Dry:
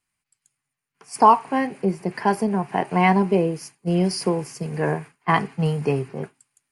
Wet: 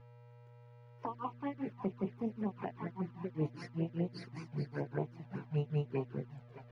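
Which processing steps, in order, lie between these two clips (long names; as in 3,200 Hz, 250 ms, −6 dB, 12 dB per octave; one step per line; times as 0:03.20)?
source passing by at 0:02.56, 21 m/s, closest 1.3 metres
camcorder AGC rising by 46 dB per second
high-pass filter 60 Hz 6 dB per octave
parametric band 5,000 Hz −5 dB 0.25 octaves
mains-hum notches 60/120/180/240/300/360/420 Hz
reversed playback
downward compressor 16 to 1, threshold −31 dBFS, peak gain reduction 14 dB
reversed playback
feedback echo with a high-pass in the loop 636 ms, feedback 51%, high-pass 160 Hz, level −9.5 dB
granular cloud 178 ms, grains 5.1 per second, pitch spread up and down by 0 semitones
hum with harmonics 120 Hz, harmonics 19, −57 dBFS −7 dB per octave
bit reduction 10 bits
flanger swept by the level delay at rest 2.5 ms, full sweep at −32.5 dBFS
high-frequency loss of the air 290 metres
level +3 dB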